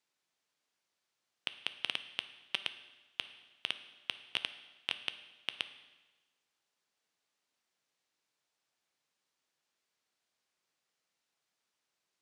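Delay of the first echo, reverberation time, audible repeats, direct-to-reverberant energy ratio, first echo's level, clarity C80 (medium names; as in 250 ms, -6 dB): no echo, 1.2 s, no echo, 10.5 dB, no echo, 14.5 dB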